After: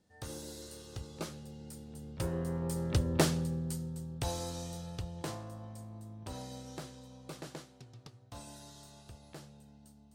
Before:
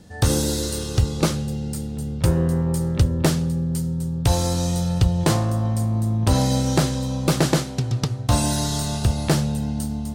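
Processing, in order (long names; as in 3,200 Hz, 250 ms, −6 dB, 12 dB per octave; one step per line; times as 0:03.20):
source passing by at 0:03.21, 6 m/s, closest 2.9 metres
bass and treble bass −6 dB, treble −1 dB
level −5.5 dB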